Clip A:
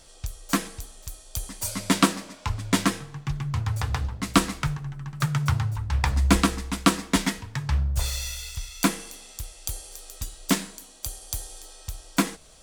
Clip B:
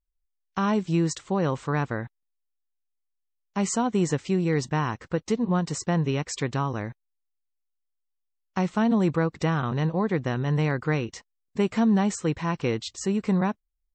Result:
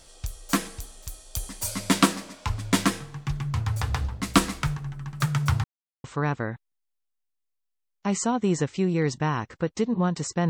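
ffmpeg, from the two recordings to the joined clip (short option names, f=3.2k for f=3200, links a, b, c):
-filter_complex "[0:a]apad=whole_dur=10.49,atrim=end=10.49,asplit=2[a][b];[a]atrim=end=5.64,asetpts=PTS-STARTPTS,afade=t=out:st=5.636:d=0.004:c=hsin[c];[b]atrim=start=5.64:end=6.04,asetpts=PTS-STARTPTS,volume=0[d];[1:a]atrim=start=1.55:end=6,asetpts=PTS-STARTPTS,afade=t=in:d=0.004:c=hsin[e];[c][d][e]concat=n=3:v=0:a=1"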